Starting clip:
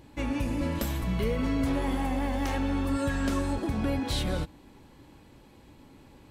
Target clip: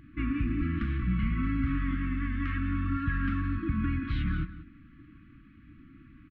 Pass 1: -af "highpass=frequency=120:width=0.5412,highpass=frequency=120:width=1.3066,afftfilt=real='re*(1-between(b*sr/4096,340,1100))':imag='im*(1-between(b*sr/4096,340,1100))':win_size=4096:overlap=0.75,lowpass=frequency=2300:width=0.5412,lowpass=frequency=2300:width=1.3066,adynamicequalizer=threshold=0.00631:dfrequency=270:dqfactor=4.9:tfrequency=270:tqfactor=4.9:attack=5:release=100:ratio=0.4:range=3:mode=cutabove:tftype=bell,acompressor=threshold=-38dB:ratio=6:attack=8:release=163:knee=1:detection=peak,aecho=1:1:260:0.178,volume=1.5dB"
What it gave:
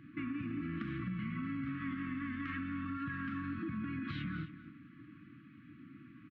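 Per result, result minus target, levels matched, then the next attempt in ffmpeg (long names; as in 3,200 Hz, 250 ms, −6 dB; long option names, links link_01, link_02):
downward compressor: peak gain reduction +10 dB; echo 77 ms late; 125 Hz band −3.0 dB
-af "highpass=frequency=120:width=0.5412,highpass=frequency=120:width=1.3066,afftfilt=real='re*(1-between(b*sr/4096,340,1100))':imag='im*(1-between(b*sr/4096,340,1100))':win_size=4096:overlap=0.75,lowpass=frequency=2300:width=0.5412,lowpass=frequency=2300:width=1.3066,adynamicequalizer=threshold=0.00631:dfrequency=270:dqfactor=4.9:tfrequency=270:tqfactor=4.9:attack=5:release=100:ratio=0.4:range=3:mode=cutabove:tftype=bell,aecho=1:1:183:0.178,volume=1.5dB"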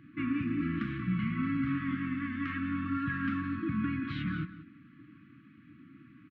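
125 Hz band −3.5 dB
-af "afftfilt=real='re*(1-between(b*sr/4096,340,1100))':imag='im*(1-between(b*sr/4096,340,1100))':win_size=4096:overlap=0.75,lowpass=frequency=2300:width=0.5412,lowpass=frequency=2300:width=1.3066,adynamicequalizer=threshold=0.00631:dfrequency=270:dqfactor=4.9:tfrequency=270:tqfactor=4.9:attack=5:release=100:ratio=0.4:range=3:mode=cutabove:tftype=bell,aecho=1:1:183:0.178,volume=1.5dB"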